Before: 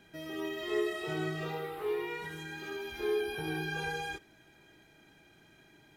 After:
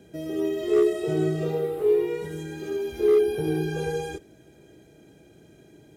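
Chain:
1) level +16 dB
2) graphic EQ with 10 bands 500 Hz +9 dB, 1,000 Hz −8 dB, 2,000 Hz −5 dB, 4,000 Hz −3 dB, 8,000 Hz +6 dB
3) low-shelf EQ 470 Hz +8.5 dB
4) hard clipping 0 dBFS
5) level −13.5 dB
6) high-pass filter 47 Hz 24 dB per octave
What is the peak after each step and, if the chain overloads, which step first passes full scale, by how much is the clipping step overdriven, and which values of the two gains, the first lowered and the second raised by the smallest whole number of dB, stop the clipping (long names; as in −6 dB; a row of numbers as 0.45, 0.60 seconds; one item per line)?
−5.5, −1.0, +3.5, 0.0, −13.5, −11.5 dBFS
step 3, 3.5 dB
step 1 +12 dB, step 5 −9.5 dB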